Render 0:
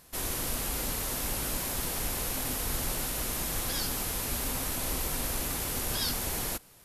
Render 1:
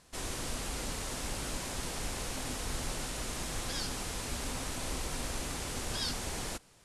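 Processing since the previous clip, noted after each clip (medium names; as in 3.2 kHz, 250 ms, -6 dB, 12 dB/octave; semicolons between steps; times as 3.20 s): low-pass 9.1 kHz 24 dB/octave; trim -3 dB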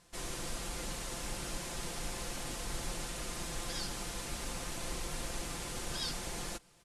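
comb 5.8 ms, depth 49%; trim -3.5 dB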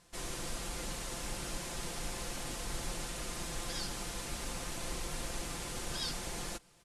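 no audible change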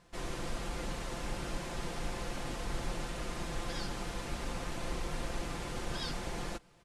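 peaking EQ 12 kHz -13 dB 2.2 oct; trim +3.5 dB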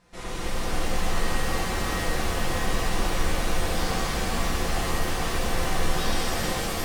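pitch-shifted reverb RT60 3.8 s, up +7 st, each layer -2 dB, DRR -8 dB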